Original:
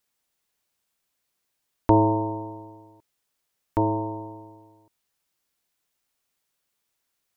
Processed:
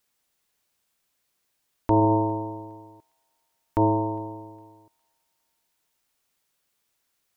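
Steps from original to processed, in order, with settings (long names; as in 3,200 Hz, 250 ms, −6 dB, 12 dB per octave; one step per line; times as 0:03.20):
brickwall limiter −13.5 dBFS, peak gain reduction 9 dB
delay with a high-pass on its return 408 ms, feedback 42%, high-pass 1,800 Hz, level −22.5 dB
level +3 dB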